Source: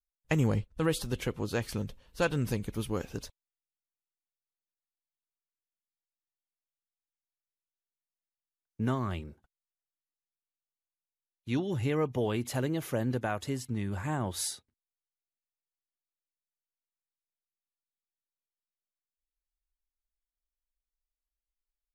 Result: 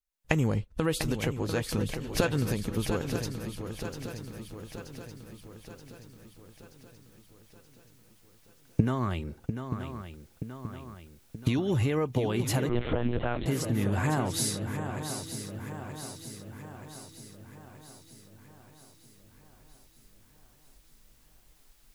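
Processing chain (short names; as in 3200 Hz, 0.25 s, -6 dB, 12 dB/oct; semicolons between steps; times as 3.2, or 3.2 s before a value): recorder AGC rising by 37 dB/s; swung echo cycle 0.928 s, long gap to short 3:1, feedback 55%, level -8.5 dB; 12.69–13.46 monotone LPC vocoder at 8 kHz 120 Hz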